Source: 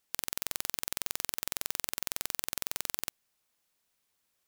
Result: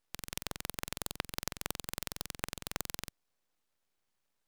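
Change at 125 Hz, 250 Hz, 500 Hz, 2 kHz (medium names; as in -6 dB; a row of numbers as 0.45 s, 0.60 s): +7.5 dB, +4.5 dB, +2.0 dB, -1.0 dB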